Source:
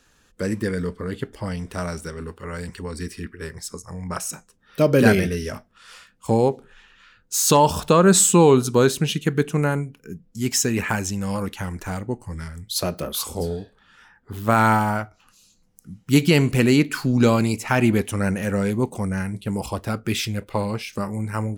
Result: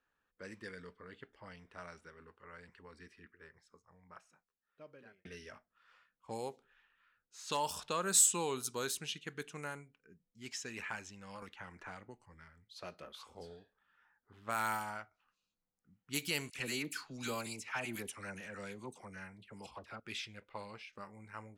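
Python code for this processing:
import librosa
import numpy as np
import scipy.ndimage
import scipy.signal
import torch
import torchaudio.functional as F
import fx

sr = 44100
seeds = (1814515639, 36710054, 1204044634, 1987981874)

y = fx.band_squash(x, sr, depth_pct=100, at=(11.42, 12.26))
y = fx.dispersion(y, sr, late='lows', ms=55.0, hz=1200.0, at=(16.5, 20.0))
y = fx.edit(y, sr, fx.fade_out_span(start_s=3.04, length_s=2.21), tone=tone)
y = fx.high_shelf(y, sr, hz=2900.0, db=-10.5)
y = fx.env_lowpass(y, sr, base_hz=1400.0, full_db=-13.5)
y = librosa.effects.preemphasis(y, coef=0.97, zi=[0.0])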